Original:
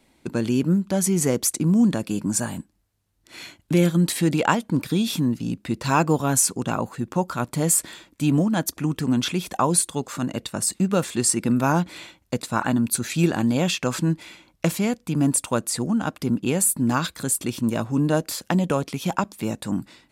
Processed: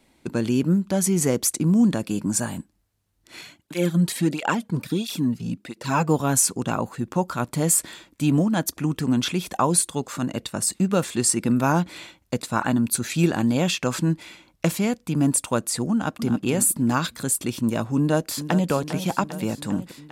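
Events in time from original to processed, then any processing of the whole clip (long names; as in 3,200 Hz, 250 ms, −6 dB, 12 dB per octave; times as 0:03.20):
0:03.41–0:06.09: through-zero flanger with one copy inverted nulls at 1.5 Hz, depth 3.8 ms
0:15.92–0:16.44: delay throw 270 ms, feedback 25%, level −9.5 dB
0:17.97–0:18.71: delay throw 400 ms, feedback 70%, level −11 dB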